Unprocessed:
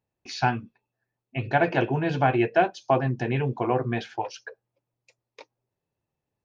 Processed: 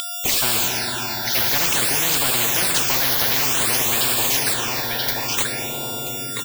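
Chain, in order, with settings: coarse spectral quantiser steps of 30 dB; treble shelf 2.9 kHz +7.5 dB; in parallel at +2.5 dB: peak limiter -18.5 dBFS, peak gain reduction 11 dB; on the sum: whistle 3.5 kHz -30 dBFS; word length cut 6-bit, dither none; delay 982 ms -13 dB; on a send at -10.5 dB: reverberation RT60 3.9 s, pre-delay 12 ms; on the sum: phase shifter stages 8, 0.55 Hz, lowest notch 330–1900 Hz; spectrum-flattening compressor 10:1

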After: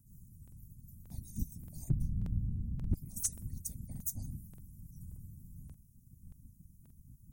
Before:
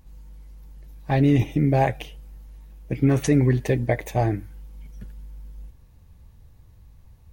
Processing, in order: inverse Chebyshev band-stop 170–3200 Hz, stop band 50 dB; harmonic-percussive split harmonic -17 dB; 1.89–2.94 s: tilt EQ -4 dB/octave; wavefolder -28 dBFS; whisper effect; crackling interface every 0.58 s, samples 2048, repeat, from 0.43 s; trim +7 dB

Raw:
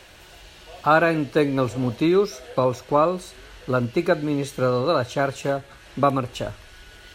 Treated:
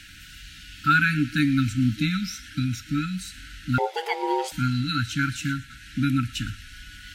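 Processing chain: FFT band-reject 310–1300 Hz; 3.78–4.52 s: ring modulator 650 Hz; feedback echo behind a high-pass 116 ms, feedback 53%, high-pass 1.8 kHz, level -17.5 dB; trim +3 dB

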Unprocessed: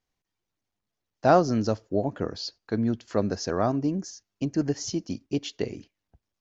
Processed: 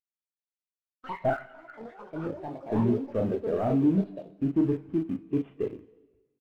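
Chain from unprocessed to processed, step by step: CVSD coder 16 kbps; 1.30–2.26 s: ladder high-pass 1.4 kHz, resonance 85%; early reflections 37 ms -5.5 dB, 62 ms -16 dB; in parallel at -7 dB: bit crusher 5-bit; on the sum: saturation -18.5 dBFS, distortion -14 dB; ever faster or slower copies 208 ms, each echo +6 st, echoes 3, each echo -6 dB; on a send at -11 dB: reverberation RT60 2.0 s, pre-delay 27 ms; on the sum: spectral contrast expander 1.5:1

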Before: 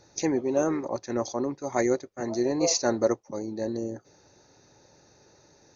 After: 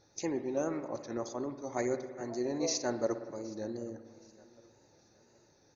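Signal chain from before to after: wow and flutter 58 cents; feedback delay 769 ms, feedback 37%, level -22.5 dB; spring tank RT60 1.5 s, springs 57 ms, chirp 70 ms, DRR 9.5 dB; trim -8.5 dB

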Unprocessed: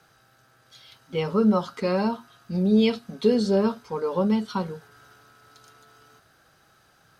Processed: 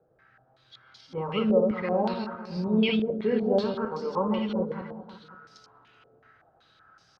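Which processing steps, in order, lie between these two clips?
backward echo that repeats 107 ms, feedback 47%, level -3 dB; 3.64–4.13 s: distance through air 120 m; multi-tap echo 191/532 ms -13.5/-16 dB; step-sequenced low-pass 5.3 Hz 530–5300 Hz; trim -7.5 dB

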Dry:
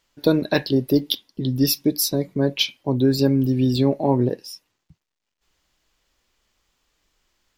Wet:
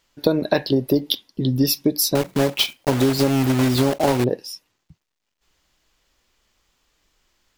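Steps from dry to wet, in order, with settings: 2.15–4.25 s: block-companded coder 3-bit; dynamic bell 700 Hz, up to +6 dB, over -34 dBFS, Q 1.1; compression 6:1, threshold -17 dBFS, peak gain reduction 8 dB; trim +3 dB

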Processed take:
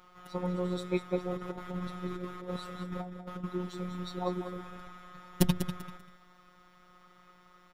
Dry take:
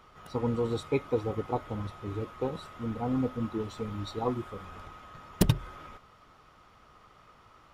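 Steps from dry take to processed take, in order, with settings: 1.31–3.44 s: compressor with a negative ratio -35 dBFS, ratio -0.5; robot voice 180 Hz; feedback delay 195 ms, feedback 24%, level -9.5 dB

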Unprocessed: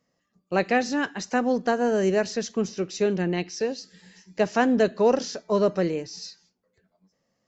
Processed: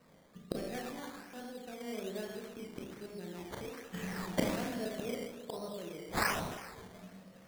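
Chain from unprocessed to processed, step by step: inverted gate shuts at -28 dBFS, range -35 dB; rotary cabinet horn 0.8 Hz, later 5 Hz, at 5.48 s; Schroeder reverb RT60 1.4 s, combs from 26 ms, DRR -2.5 dB; decimation with a swept rate 13×, swing 60% 1.2 Hz; trim +13 dB

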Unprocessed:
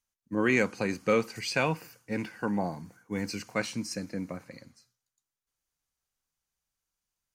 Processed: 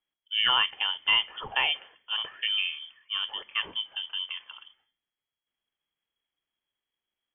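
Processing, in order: 3.38–4.23 s: dynamic bell 2.1 kHz, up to -4 dB, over -47 dBFS, Q 1.1; frequency inversion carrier 3.3 kHz; trim +1 dB

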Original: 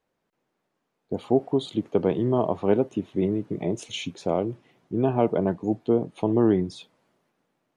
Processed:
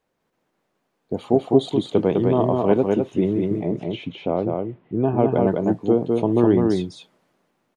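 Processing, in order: 3.59–5.32 s: distance through air 440 m; delay 204 ms -3 dB; trim +3 dB

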